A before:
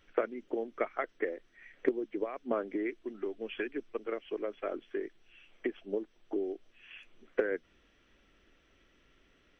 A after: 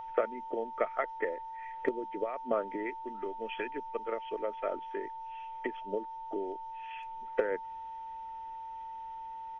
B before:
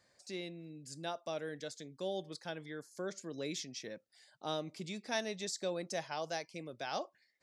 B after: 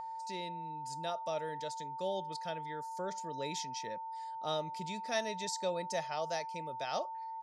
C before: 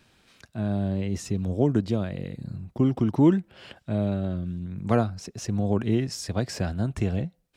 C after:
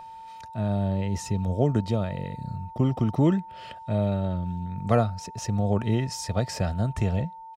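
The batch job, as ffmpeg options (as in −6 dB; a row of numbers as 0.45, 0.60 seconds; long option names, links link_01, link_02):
-af "aeval=exprs='val(0)+0.0158*sin(2*PI*900*n/s)':channel_layout=same,aecho=1:1:1.6:0.44"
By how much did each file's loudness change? 0.0, +3.0, 0.0 LU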